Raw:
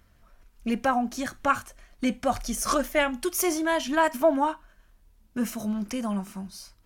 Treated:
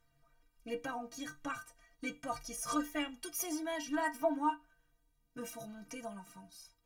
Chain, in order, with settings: metallic resonator 140 Hz, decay 0.28 s, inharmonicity 0.03

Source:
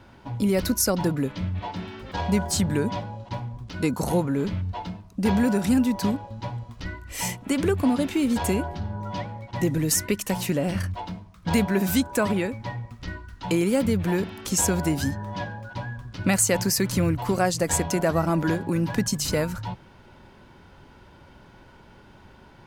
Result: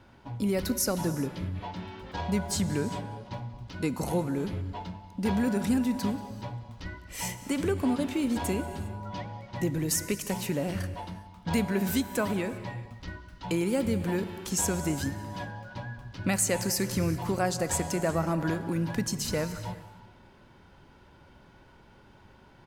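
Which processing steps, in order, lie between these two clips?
outdoor echo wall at 32 m, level -19 dB; non-linear reverb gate 0.43 s flat, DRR 12 dB; gain -5.5 dB

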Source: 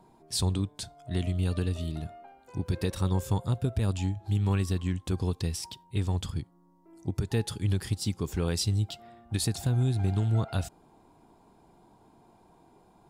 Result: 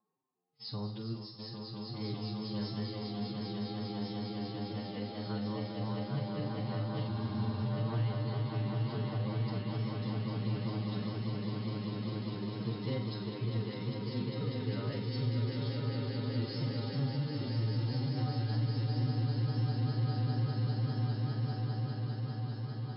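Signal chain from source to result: on a send: swelling echo 0.114 s, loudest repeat 8, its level -5 dB; on the sum: gate with hold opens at -22 dBFS; de-hum 142.9 Hz, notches 37; reverse; upward compressor, threshold -38 dBFS; reverse; limiter -15.5 dBFS, peak gain reduction 5.5 dB; time stretch by phase-locked vocoder 2×; vibrato 1.9 Hz 26 cents; resonator 220 Hz, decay 0.77 s, harmonics odd, mix 70%; varispeed +14%; FFT band-pass 100–5300 Hz; flutter echo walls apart 7.5 m, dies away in 0.31 s; spectral freeze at 7.1, 0.56 s

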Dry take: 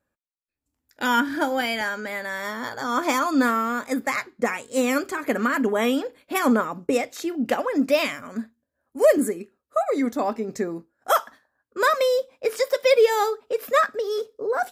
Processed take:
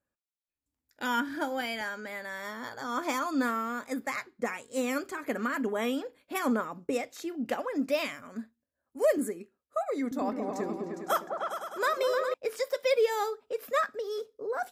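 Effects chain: 10.01–12.34 repeats that get brighter 0.102 s, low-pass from 200 Hz, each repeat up 2 oct, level 0 dB; gain -8.5 dB

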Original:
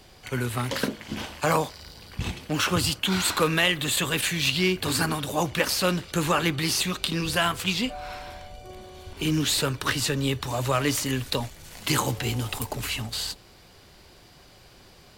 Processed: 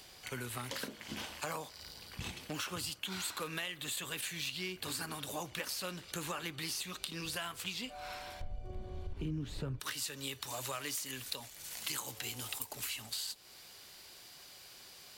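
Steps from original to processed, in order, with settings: tilt +1.5 dB/oct, from 8.4 s -4 dB/oct, from 9.79 s +3 dB/oct; compressor 4:1, threshold -32 dBFS, peak gain reduction 16.5 dB; mismatched tape noise reduction encoder only; gain -6.5 dB

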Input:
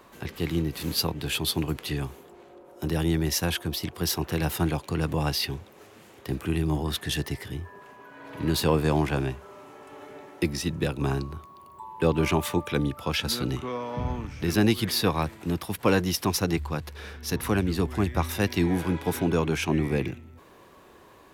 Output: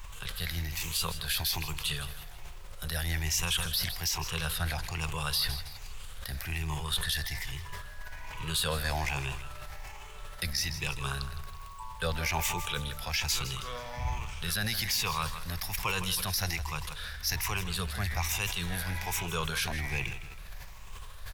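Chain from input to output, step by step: moving spectral ripple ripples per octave 0.7, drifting +1.2 Hz, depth 10 dB; added noise brown -41 dBFS; passive tone stack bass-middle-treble 10-0-10; limiter -23.5 dBFS, peak gain reduction 11.5 dB; 4.09–4.91 high shelf 11000 Hz -11.5 dB; feedback echo 0.161 s, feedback 44%, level -13.5 dB; sustainer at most 49 dB/s; gain +4 dB

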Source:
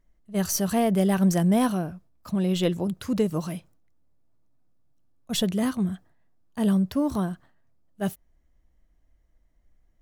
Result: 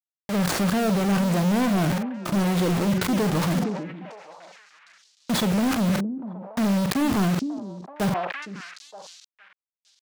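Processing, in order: median filter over 15 samples; elliptic low-pass 10000 Hz; gate with hold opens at -54 dBFS; HPF 120 Hz 12 dB/oct; in parallel at -2 dB: compressor, threshold -34 dBFS, peak gain reduction 14.5 dB; on the sum: limiter -20 dBFS, peak gain reduction 8 dB; sample gate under -37.5 dBFS; sample leveller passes 5; doubler 45 ms -12.5 dB; on a send: delay with a stepping band-pass 0.463 s, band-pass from 280 Hz, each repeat 1.4 oct, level -10 dB; on the sum: sustainer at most 43 dB/s

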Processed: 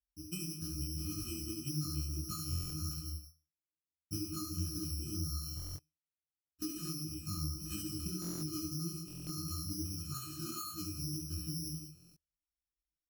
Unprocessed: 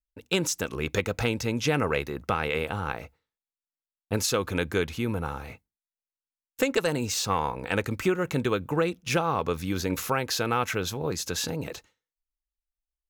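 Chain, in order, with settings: elliptic band-stop 320–1100 Hz, stop band 40 dB; octave resonator D#, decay 0.31 s; careless resampling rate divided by 8×, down filtered, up zero stuff; bell 5200 Hz +2.5 dB; on a send: tapped delay 67/175 ms -3.5/-13 dB; on the sum: limiter -16.5 dBFS, peak gain reduction 9 dB; compressor, threshold -36 dBFS, peak gain reduction 12 dB; tilt shelf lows +7.5 dB, about 820 Hz; stuck buffer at 2.49/5.55/8.2/9.06/11.93, samples 1024, times 8; detuned doubles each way 58 cents; gain +8.5 dB

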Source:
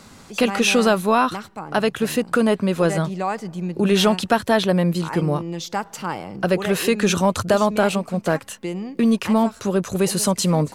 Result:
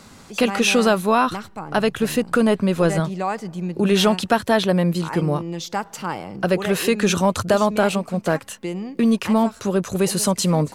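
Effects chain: 1.27–3 low shelf 71 Hz +11.5 dB

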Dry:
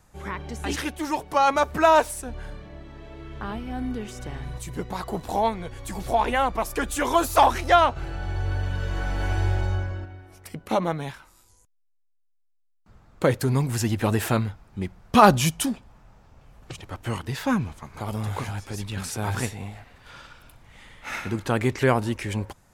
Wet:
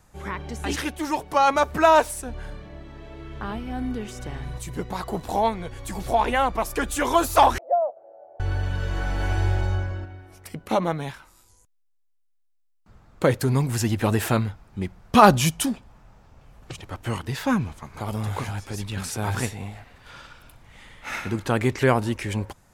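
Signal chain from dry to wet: 7.58–8.4 Butterworth band-pass 600 Hz, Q 3.6; gain +1 dB

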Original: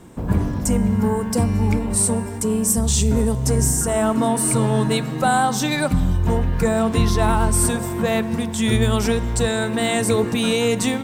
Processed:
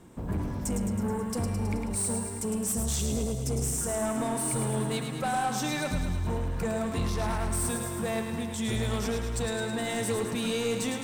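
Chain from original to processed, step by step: spectral delete 2.99–3.78, 770–2000 Hz; soft clip -15.5 dBFS, distortion -14 dB; thinning echo 0.107 s, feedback 66%, high-pass 470 Hz, level -6 dB; gain -8.5 dB

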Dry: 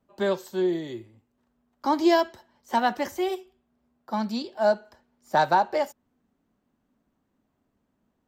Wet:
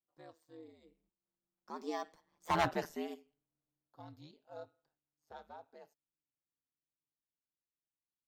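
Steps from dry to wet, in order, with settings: Doppler pass-by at 2.62, 30 m/s, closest 3.2 m; hard clip -24 dBFS, distortion -8 dB; ring modulator 78 Hz

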